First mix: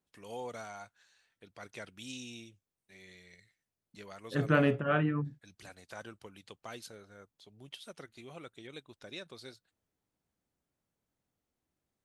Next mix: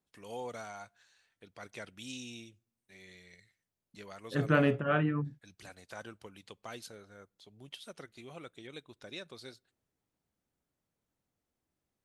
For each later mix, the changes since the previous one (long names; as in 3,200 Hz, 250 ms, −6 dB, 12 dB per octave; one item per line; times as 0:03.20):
reverb: on, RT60 0.75 s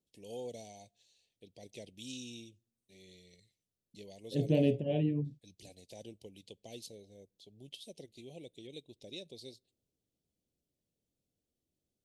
master: add Chebyshev band-stop filter 530–3,300 Hz, order 2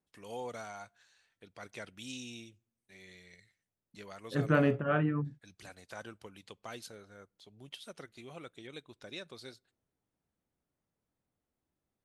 second voice: add low-pass filter 2,100 Hz 6 dB per octave
master: remove Chebyshev band-stop filter 530–3,300 Hz, order 2